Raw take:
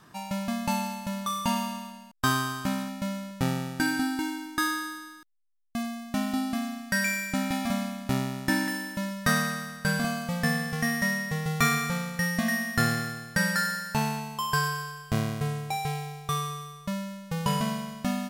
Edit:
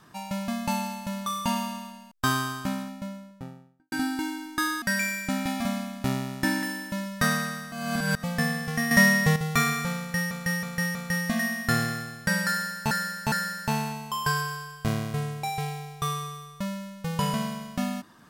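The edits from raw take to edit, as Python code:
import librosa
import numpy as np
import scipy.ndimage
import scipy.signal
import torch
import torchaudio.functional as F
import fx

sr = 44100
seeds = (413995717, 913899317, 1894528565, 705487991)

y = fx.studio_fade_out(x, sr, start_s=2.43, length_s=1.49)
y = fx.edit(y, sr, fx.cut(start_s=4.82, length_s=2.05),
    fx.reverse_span(start_s=9.77, length_s=0.51),
    fx.clip_gain(start_s=10.96, length_s=0.45, db=9.0),
    fx.repeat(start_s=12.04, length_s=0.32, count=4),
    fx.repeat(start_s=13.59, length_s=0.41, count=3), tone=tone)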